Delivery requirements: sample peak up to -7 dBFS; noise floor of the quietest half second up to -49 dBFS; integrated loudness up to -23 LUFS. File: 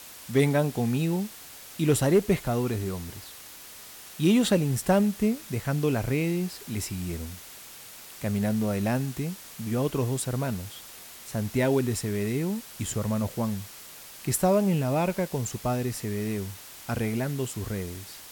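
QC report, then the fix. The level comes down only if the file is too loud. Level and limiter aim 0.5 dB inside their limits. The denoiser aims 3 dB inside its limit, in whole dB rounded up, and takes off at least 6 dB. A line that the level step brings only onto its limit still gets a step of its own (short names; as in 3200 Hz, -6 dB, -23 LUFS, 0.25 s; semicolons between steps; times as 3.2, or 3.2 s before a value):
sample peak -12.0 dBFS: OK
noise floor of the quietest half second -45 dBFS: fail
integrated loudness -27.5 LUFS: OK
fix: denoiser 7 dB, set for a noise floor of -45 dBFS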